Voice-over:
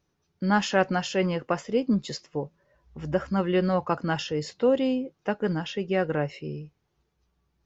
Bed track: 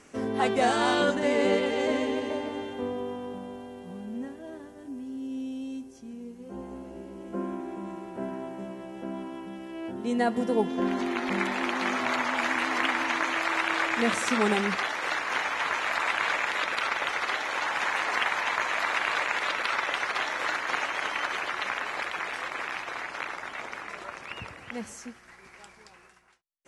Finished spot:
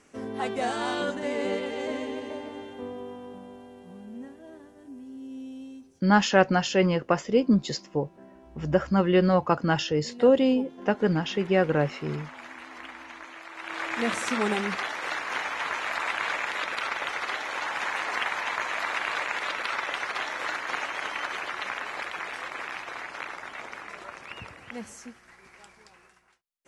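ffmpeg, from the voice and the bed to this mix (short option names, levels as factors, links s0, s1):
-filter_complex "[0:a]adelay=5600,volume=1.41[s0];[1:a]volume=2.82,afade=t=out:st=5.6:d=0.45:silence=0.281838,afade=t=in:st=13.55:d=0.48:silence=0.199526[s1];[s0][s1]amix=inputs=2:normalize=0"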